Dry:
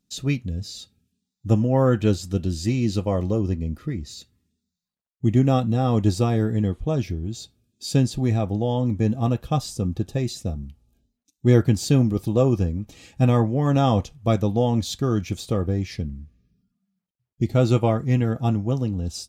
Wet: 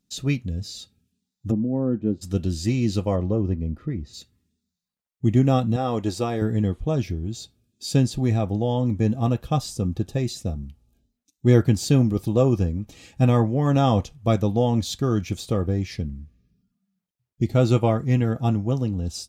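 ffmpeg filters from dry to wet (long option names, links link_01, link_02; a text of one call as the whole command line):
ffmpeg -i in.wav -filter_complex "[0:a]asplit=3[link_01][link_02][link_03];[link_01]afade=type=out:start_time=1.5:duration=0.02[link_04];[link_02]bandpass=frequency=250:width_type=q:width=1.7,afade=type=in:start_time=1.5:duration=0.02,afade=type=out:start_time=2.21:duration=0.02[link_05];[link_03]afade=type=in:start_time=2.21:duration=0.02[link_06];[link_04][link_05][link_06]amix=inputs=3:normalize=0,asplit=3[link_07][link_08][link_09];[link_07]afade=type=out:start_time=3.15:duration=0.02[link_10];[link_08]lowpass=frequency=1400:poles=1,afade=type=in:start_time=3.15:duration=0.02,afade=type=out:start_time=4.13:duration=0.02[link_11];[link_09]afade=type=in:start_time=4.13:duration=0.02[link_12];[link_10][link_11][link_12]amix=inputs=3:normalize=0,asettb=1/sr,asplit=3[link_13][link_14][link_15];[link_13]atrim=end=5.764[link_16];[link_14]atrim=start=5.76:end=6.42,asetpts=PTS-STARTPTS,afade=type=in:duration=0.004:curve=qsin,afade=type=out:start_time=0.656:duration=0.004:curve=qsin,bass=frequency=250:gain=-10,treble=frequency=4000:gain=-2[link_17];[link_15]atrim=start=6.416[link_18];[link_16][link_17]acrossfade=duration=0.004:curve1=hsin:curve2=qsin[link_19];[link_19][link_18]acrossfade=duration=0.004:curve1=qsin:curve2=hsin" out.wav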